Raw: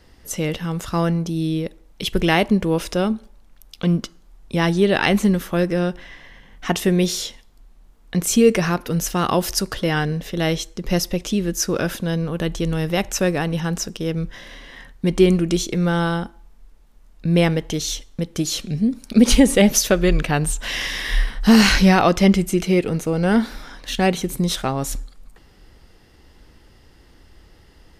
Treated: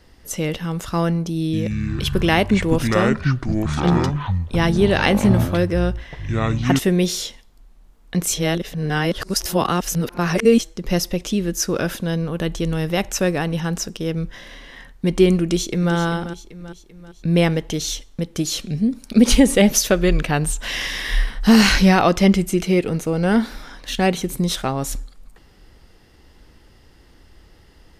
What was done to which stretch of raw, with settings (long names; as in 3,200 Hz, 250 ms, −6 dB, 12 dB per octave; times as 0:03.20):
0:01.36–0:06.79: delay with pitch and tempo change per echo 171 ms, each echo −7 semitones, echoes 3
0:08.34–0:10.61: reverse
0:15.43–0:15.94: delay throw 390 ms, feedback 50%, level −11.5 dB